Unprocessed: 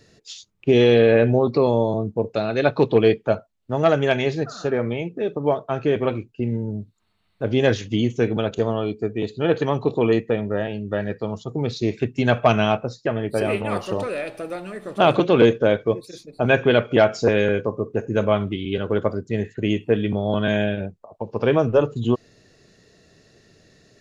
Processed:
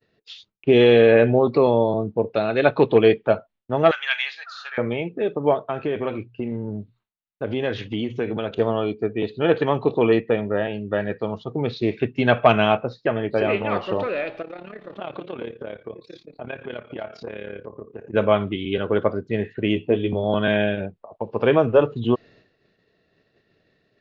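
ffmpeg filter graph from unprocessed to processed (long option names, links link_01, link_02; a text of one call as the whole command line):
ffmpeg -i in.wav -filter_complex "[0:a]asettb=1/sr,asplit=3[link_01][link_02][link_03];[link_01]atrim=end=3.914[link_04];[link_02]atrim=start=3.91:end=4.78,asetpts=PTS-STARTPTS,afade=type=in:duration=0.004:curve=qsin,afade=type=out:start_time=0.866:duration=0.004:curve=qsin,highpass=frequency=1300:width=0.5412,highpass=frequency=1300:width=1.3066,highshelf=frequency=5300:gain=11[link_05];[link_03]atrim=start=4.776[link_06];[link_04][link_05]acrossfade=duration=0.004:curve1=hsin:curve2=qsin[link_07];[link_07][link_06]acrossfade=duration=0.004:curve1=qsin:curve2=hsin,asettb=1/sr,asplit=3[link_08][link_09][link_10];[link_08]atrim=end=5.614[link_11];[link_09]atrim=start=5.61:end=8.57,asetpts=PTS-STARTPTS,afade=type=in:duration=0.004:curve=qsin,afade=type=out:start_time=2.956:duration=0.004:curve=qsin,bandreject=frequency=60:width_type=h:width=6,bandreject=frequency=120:width_type=h:width=6,acompressor=threshold=-22dB:ratio=3:attack=3.2:release=140:knee=1:detection=peak[link_12];[link_10]atrim=start=8.566[link_13];[link_11][link_12]acrossfade=duration=0.004:curve1=hsin:curve2=qsin[link_14];[link_14][link_13]acrossfade=duration=0.004:curve1=qsin:curve2=hsin,asettb=1/sr,asplit=3[link_15][link_16][link_17];[link_15]atrim=end=14.424[link_18];[link_16]atrim=start=14.42:end=18.14,asetpts=PTS-STARTPTS,afade=type=in:duration=0.004:curve=qsin,afade=type=out:start_time=3.716:duration=0.004:curve=qsin,acompressor=threshold=-32dB:ratio=3:attack=3.2:release=140:knee=1:detection=peak,tremolo=f=35:d=0.788[link_19];[link_17]atrim=start=18.136[link_20];[link_18][link_19]acrossfade=duration=0.004:curve1=hsin:curve2=qsin[link_21];[link_21][link_20]acrossfade=duration=0.004:curve1=qsin:curve2=hsin,asettb=1/sr,asplit=3[link_22][link_23][link_24];[link_22]atrim=end=19.754[link_25];[link_23]atrim=start=19.75:end=20.24,asetpts=PTS-STARTPTS,afade=type=in:duration=0.004:curve=qsin,afade=type=out:start_time=0.486:duration=0.004:curve=qsin,equalizer=frequency=1600:width=1.5:gain=-11.5,asplit=2[link_26][link_27];[link_27]adelay=12,volume=-6.5dB[link_28];[link_26][link_28]amix=inputs=2:normalize=0,atrim=end_sample=21609[link_29];[link_24]atrim=start=20.236[link_30];[link_25][link_29]acrossfade=duration=0.004:curve1=hsin:curve2=qsin[link_31];[link_31][link_30]acrossfade=duration=0.004:curve1=qsin:curve2=hsin,agate=range=-33dB:threshold=-46dB:ratio=3:detection=peak,lowpass=frequency=3700:width=0.5412,lowpass=frequency=3700:width=1.3066,lowshelf=frequency=200:gain=-7,volume=2.5dB" out.wav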